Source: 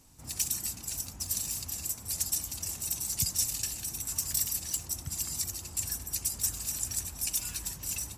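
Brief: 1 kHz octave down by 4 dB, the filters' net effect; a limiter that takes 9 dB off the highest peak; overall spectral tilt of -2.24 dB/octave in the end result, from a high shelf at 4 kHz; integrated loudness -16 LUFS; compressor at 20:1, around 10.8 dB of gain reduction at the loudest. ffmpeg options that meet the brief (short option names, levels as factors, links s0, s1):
-af "equalizer=f=1000:t=o:g=-4.5,highshelf=f=4000:g=-9,acompressor=threshold=0.0112:ratio=20,volume=28.2,alimiter=limit=0.473:level=0:latency=1"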